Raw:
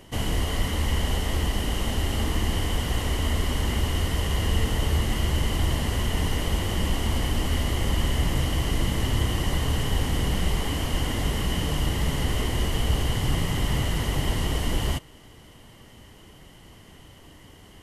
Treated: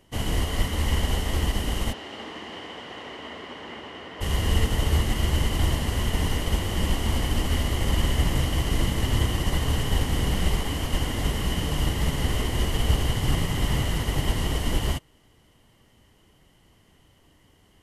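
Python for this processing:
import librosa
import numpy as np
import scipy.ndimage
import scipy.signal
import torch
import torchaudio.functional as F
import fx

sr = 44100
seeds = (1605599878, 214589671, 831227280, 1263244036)

y = fx.bandpass_edges(x, sr, low_hz=330.0, high_hz=fx.line((1.92, 4100.0), (4.2, 2600.0)), at=(1.92, 4.2), fade=0.02)
y = fx.upward_expand(y, sr, threshold_db=-44.0, expansion=1.5)
y = y * 10.0 ** (2.5 / 20.0)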